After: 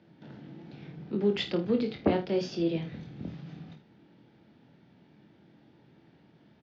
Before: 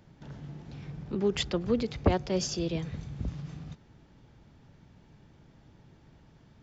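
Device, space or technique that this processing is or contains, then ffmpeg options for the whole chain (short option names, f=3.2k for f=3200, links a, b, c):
kitchen radio: -filter_complex "[0:a]asettb=1/sr,asplit=3[a][b][c];[a]atrim=end=1.894[d];[b]atrim=start=1.89:end=2.89,asetpts=PTS-STARTPTS,afade=t=in:d=0.004:c=qsin,afade=t=out:st=0.996:d=0.004:c=qsin,lowpass=5.6k[e];[c]atrim=start=2.886[f];[d][e]acrossfade=d=0.004:c1=hsin:c2=qsin[g];[g][f]acrossfade=d=0.004:c1=qsin:c2=hsin,highpass=170,equalizer=f=200:t=q:w=4:g=4,equalizer=f=320:t=q:w=4:g=5,equalizer=f=1.1k:t=q:w=4:g=-6,lowpass=f=4.5k:w=0.5412,lowpass=f=4.5k:w=1.3066,aecho=1:1:24|51|79:0.501|0.299|0.178,volume=-1.5dB"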